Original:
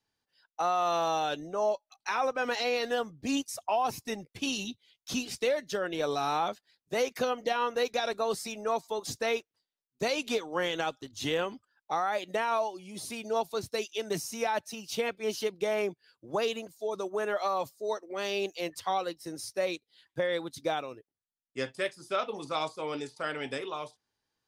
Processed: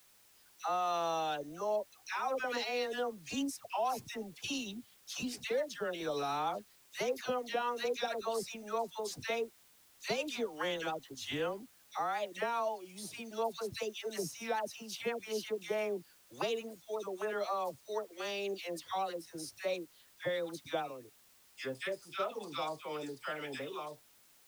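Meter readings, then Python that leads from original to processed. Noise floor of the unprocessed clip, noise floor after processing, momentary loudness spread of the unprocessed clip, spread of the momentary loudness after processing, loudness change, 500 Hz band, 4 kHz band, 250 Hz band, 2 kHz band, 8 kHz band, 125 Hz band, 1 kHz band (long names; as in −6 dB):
below −85 dBFS, −64 dBFS, 7 LU, 8 LU, −5.5 dB, −5.5 dB, −5.5 dB, −5.5 dB, −5.5 dB, −5.5 dB, −5.5 dB, −5.5 dB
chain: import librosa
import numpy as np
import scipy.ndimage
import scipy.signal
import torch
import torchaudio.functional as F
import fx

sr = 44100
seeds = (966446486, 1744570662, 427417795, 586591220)

y = fx.dispersion(x, sr, late='lows', ms=90.0, hz=1100.0)
y = fx.dmg_noise_colour(y, sr, seeds[0], colour='white', level_db=-59.0)
y = y * 10.0 ** (-5.5 / 20.0)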